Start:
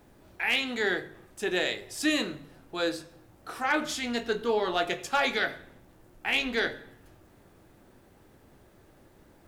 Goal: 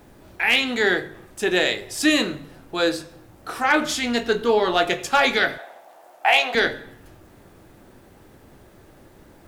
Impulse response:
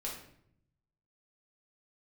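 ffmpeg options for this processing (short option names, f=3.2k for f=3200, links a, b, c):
-filter_complex "[0:a]asettb=1/sr,asplit=3[a][b][c];[a]atrim=end=5.584[d];[b]atrim=start=5.58:end=6.55,asetpts=PTS-STARTPTS,afade=t=in:d=0.004:c=qsin,afade=t=out:st=0.966:d=0.004:c=qsin,highpass=f=700:t=q:w=4.9[e];[c]atrim=start=6.546[f];[d][e]acrossfade=d=0.004:c1=hsin:c2=qsin[g];[g][f]acrossfade=d=0.004:c1=qsin:c2=hsin,volume=8dB"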